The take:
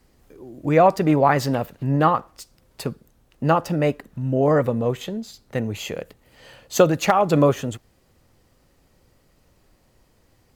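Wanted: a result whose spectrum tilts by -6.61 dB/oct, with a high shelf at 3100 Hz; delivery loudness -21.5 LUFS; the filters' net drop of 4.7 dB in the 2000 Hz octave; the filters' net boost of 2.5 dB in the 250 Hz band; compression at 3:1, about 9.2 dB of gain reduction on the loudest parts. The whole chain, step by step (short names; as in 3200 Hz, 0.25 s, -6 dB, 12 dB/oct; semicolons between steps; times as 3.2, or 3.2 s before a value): bell 250 Hz +3.5 dB; bell 2000 Hz -5 dB; high shelf 3100 Hz -4 dB; compressor 3:1, threshold -21 dBFS; gain +4.5 dB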